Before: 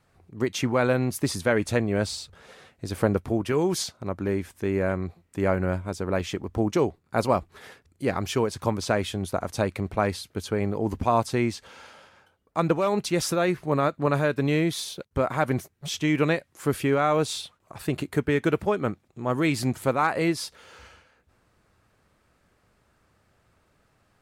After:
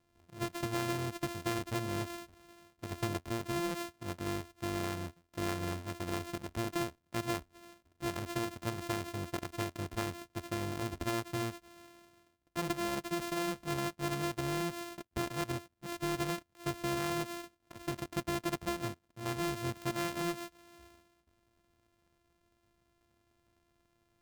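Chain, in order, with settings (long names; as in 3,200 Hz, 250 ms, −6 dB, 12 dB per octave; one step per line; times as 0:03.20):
samples sorted by size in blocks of 128 samples
downward compressor 2 to 1, threshold −25 dBFS, peak gain reduction 5.5 dB
level −8.5 dB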